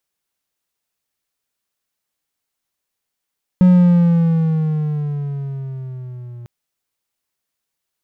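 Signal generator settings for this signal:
pitch glide with a swell triangle, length 2.85 s, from 183 Hz, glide −7.5 semitones, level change −25 dB, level −4 dB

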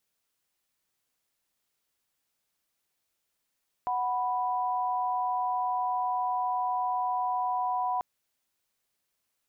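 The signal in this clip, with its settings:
held notes F#5/B5 sine, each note −29 dBFS 4.14 s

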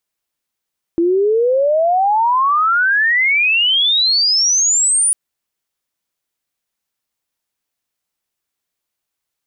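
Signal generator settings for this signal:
glide logarithmic 330 Hz → 9,800 Hz −11 dBFS → −11 dBFS 4.15 s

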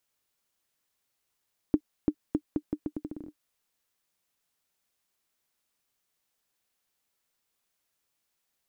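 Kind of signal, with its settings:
bouncing ball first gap 0.34 s, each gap 0.79, 301 Hz, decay 65 ms −11 dBFS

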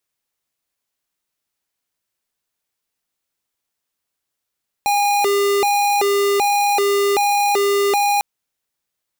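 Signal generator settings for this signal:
siren hi-lo 402–816 Hz 1.3 per second square −16.5 dBFS 3.35 s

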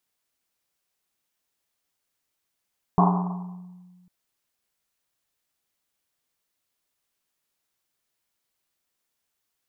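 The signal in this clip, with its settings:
drum after Risset, pitch 180 Hz, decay 1.76 s, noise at 900 Hz, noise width 420 Hz, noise 40%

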